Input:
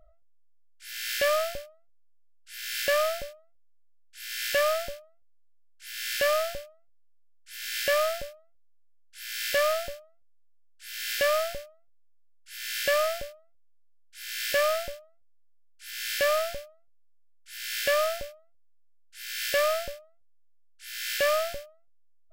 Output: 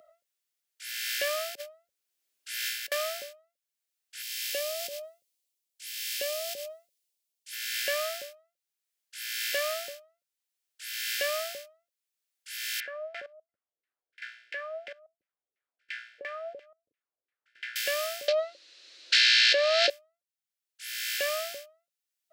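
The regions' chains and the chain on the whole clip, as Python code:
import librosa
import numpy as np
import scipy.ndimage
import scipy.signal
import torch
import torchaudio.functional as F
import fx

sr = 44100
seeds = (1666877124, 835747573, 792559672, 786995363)

y = fx.chain(x, sr, fx.low_shelf(hz=350.0, db=10.0),
    fx.over_compress(threshold_db=-35.0, ratio=-0.5), at=(1.55, 2.92))
y = fx.chain(y, sr, fx.peak_eq(hz=1400.0, db=-14.5, octaves=1.3),
    fx.sustainer(db_per_s=30.0), at=(4.22, 7.53))
y = fx.chain(y, sr, fx.high_shelf(hz=3000.0, db=4.5),
    fx.level_steps(step_db=19),
    fx.filter_lfo_lowpass(shape='saw_down', hz=2.9, low_hz=370.0, high_hz=2200.0, q=2.7), at=(12.8, 17.76))
y = fx.chain(y, sr, fx.cabinet(low_hz=270.0, low_slope=24, high_hz=5500.0, hz=(320.0, 560.0, 820.0, 1700.0, 2700.0, 4100.0), db=(9, 9, -6, 3, 3, 9)),
    fx.env_flatten(amount_pct=100), at=(18.28, 19.9))
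y = scipy.signal.sosfilt(scipy.signal.butter(2, 500.0, 'highpass', fs=sr, output='sos'), y)
y = fx.peak_eq(y, sr, hz=960.0, db=-10.0, octaves=1.0)
y = fx.band_squash(y, sr, depth_pct=40)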